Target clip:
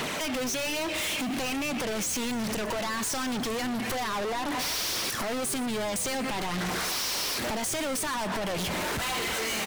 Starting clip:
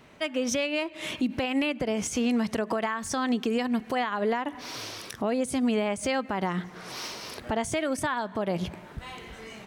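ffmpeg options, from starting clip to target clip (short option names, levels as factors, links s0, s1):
-filter_complex "[0:a]highpass=f=310:p=1,highshelf=f=3900:g=9,areverse,acompressor=mode=upward:threshold=0.0224:ratio=2.5,areverse,alimiter=level_in=1.41:limit=0.0631:level=0:latency=1,volume=0.708,acompressor=threshold=0.00794:ratio=3,aeval=exprs='0.0376*sin(PI/2*3.55*val(0)/0.0376)':c=same,aphaser=in_gain=1:out_gain=1:delay=3.9:decay=0.39:speed=1.2:type=sinusoidal,asoftclip=type=hard:threshold=0.0119,asplit=2[s0][s1];[s1]asplit=7[s2][s3][s4][s5][s6][s7][s8];[s2]adelay=121,afreqshift=-120,volume=0.15[s9];[s3]adelay=242,afreqshift=-240,volume=0.0955[s10];[s4]adelay=363,afreqshift=-360,volume=0.061[s11];[s5]adelay=484,afreqshift=-480,volume=0.0394[s12];[s6]adelay=605,afreqshift=-600,volume=0.0251[s13];[s7]adelay=726,afreqshift=-720,volume=0.016[s14];[s8]adelay=847,afreqshift=-840,volume=0.0102[s15];[s9][s10][s11][s12][s13][s14][s15]amix=inputs=7:normalize=0[s16];[s0][s16]amix=inputs=2:normalize=0,volume=2.82"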